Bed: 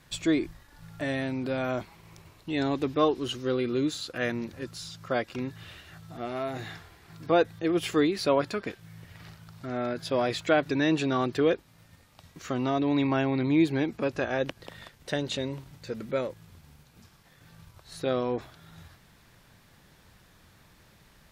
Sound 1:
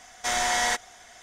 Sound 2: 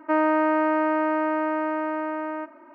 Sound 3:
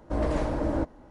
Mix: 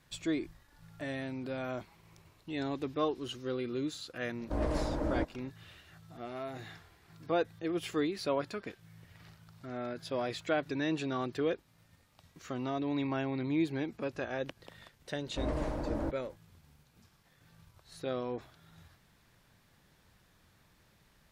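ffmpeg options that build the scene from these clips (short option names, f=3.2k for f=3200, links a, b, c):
-filter_complex "[3:a]asplit=2[a][b];[0:a]volume=-8dB[c];[a]atrim=end=1.1,asetpts=PTS-STARTPTS,volume=-5.5dB,afade=t=in:d=0.004:c=hsin,afade=t=out:st=1.096:d=0.004:c=hsin,adelay=4400[d];[b]atrim=end=1.1,asetpts=PTS-STARTPTS,volume=-7.5dB,afade=t=in:d=0.004:c=hsin,afade=t=out:st=1.096:d=0.004:c=hsin,adelay=15260[e];[c][d][e]amix=inputs=3:normalize=0"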